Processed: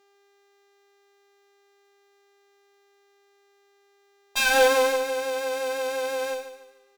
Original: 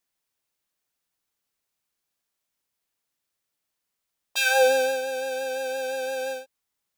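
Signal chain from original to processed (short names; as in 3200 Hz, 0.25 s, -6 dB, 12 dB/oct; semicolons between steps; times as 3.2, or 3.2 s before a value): buzz 400 Hz, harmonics 19, -63 dBFS -6 dB/oct; HPF 220 Hz; added harmonics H 6 -17 dB, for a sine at -8.5 dBFS; on a send: feedback echo 0.147 s, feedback 36%, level -11.5 dB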